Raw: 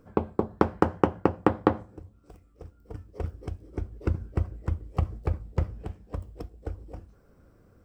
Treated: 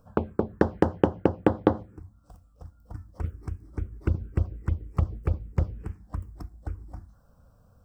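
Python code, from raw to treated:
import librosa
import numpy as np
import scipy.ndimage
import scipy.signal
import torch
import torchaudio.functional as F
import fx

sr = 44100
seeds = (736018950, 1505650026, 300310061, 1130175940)

y = fx.env_phaser(x, sr, low_hz=340.0, high_hz=2400.0, full_db=-21.0)
y = y * librosa.db_to_amplitude(2.0)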